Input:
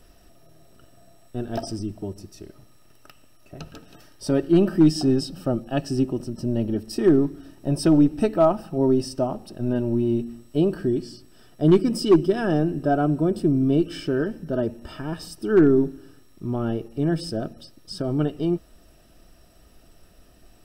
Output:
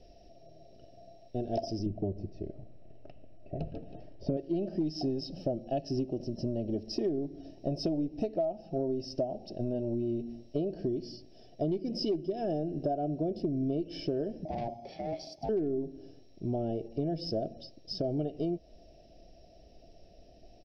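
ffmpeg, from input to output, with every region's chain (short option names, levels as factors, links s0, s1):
-filter_complex "[0:a]asettb=1/sr,asplit=3[s0][s1][s2];[s0]atrim=end=1.864[s3];[s1]atrim=start=1.86:end=4.37,asetpts=PTS-STARTPTS,afade=t=in:d=0.004:c=qsin,afade=t=out:st=2.506:d=0.004:c=qsin,lowpass=2200,lowshelf=f=300:g=8.5[s4];[s2]atrim=start=4.366[s5];[s3][s4]acrossfade=d=0.004:c1=hsin:c2=qsin[s6];[s6][s5]acrossfade=d=0.004:c1=qsin:c2=hsin,asettb=1/sr,asplit=3[s7][s8][s9];[s7]atrim=end=14.454[s10];[s8]atrim=start=14.45:end=15.49,asetpts=PTS-STARTPTS,afade=t=in:d=0.004:c=qsin,afade=t=out:st=1.036:d=0.004:c=qsin,highpass=80,asoftclip=type=hard:threshold=0.0447,aeval=exprs='val(0)*sin(2*PI*470*n/s)':c=same[s11];[s9]atrim=start=15.486[s12];[s10][s11]acrossfade=d=0.004:c1=hsin:c2=qsin[s13];[s13][s12]acrossfade=d=0.004:c1=qsin:c2=hsin,firequalizer=gain_entry='entry(250,0);entry(680,9);entry(1100,-24);entry(2200,-4);entry(3400,-4);entry(5300,3);entry(7700,-28)':delay=0.05:min_phase=1,acompressor=threshold=0.0631:ratio=12,volume=0.631"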